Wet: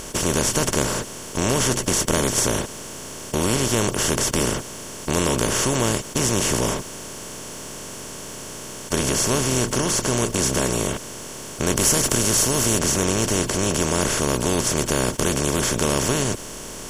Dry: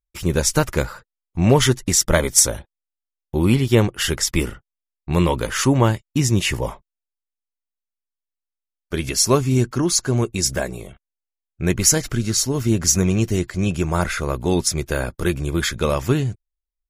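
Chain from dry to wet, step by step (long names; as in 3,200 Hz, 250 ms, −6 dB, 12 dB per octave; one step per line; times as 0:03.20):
compressor on every frequency bin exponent 0.2
0:11.76–0:12.79: high-shelf EQ 8,100 Hz +8.5 dB
level −12.5 dB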